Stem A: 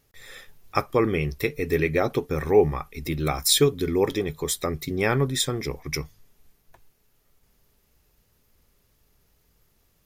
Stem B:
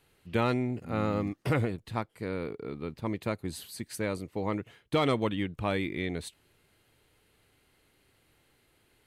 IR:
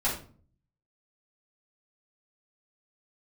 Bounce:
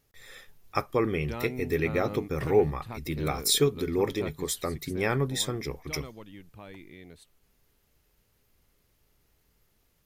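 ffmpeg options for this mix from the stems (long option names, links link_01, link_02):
-filter_complex "[0:a]volume=-4.5dB[link_01];[1:a]alimiter=limit=-23dB:level=0:latency=1:release=483,adelay=950,volume=-4dB,afade=type=out:start_time=4.4:duration=0.67:silence=0.421697[link_02];[link_01][link_02]amix=inputs=2:normalize=0"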